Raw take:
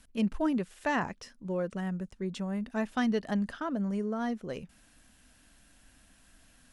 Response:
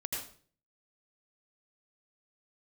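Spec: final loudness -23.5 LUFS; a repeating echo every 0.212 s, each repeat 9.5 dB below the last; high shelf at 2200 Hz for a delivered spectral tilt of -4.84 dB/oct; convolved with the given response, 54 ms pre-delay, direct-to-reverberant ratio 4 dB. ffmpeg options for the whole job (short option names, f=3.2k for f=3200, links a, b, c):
-filter_complex "[0:a]highshelf=f=2.2k:g=7,aecho=1:1:212|424|636|848:0.335|0.111|0.0365|0.012,asplit=2[a][b];[1:a]atrim=start_sample=2205,adelay=54[c];[b][c]afir=irnorm=-1:irlink=0,volume=-6dB[d];[a][d]amix=inputs=2:normalize=0,volume=6.5dB"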